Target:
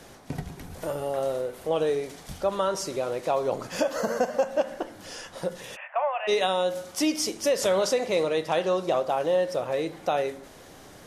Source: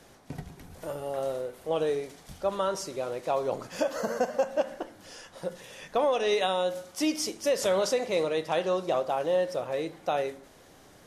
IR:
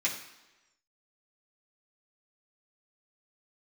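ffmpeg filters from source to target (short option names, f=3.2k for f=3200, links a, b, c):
-filter_complex "[0:a]asplit=2[a][b];[b]acompressor=threshold=-35dB:ratio=6,volume=1dB[c];[a][c]amix=inputs=2:normalize=0,asplit=3[d][e][f];[d]afade=t=out:st=5.75:d=0.02[g];[e]asuperpass=centerf=1300:order=20:qfactor=0.57,afade=t=in:st=5.75:d=0.02,afade=t=out:st=6.27:d=0.02[h];[f]afade=t=in:st=6.27:d=0.02[i];[g][h][i]amix=inputs=3:normalize=0"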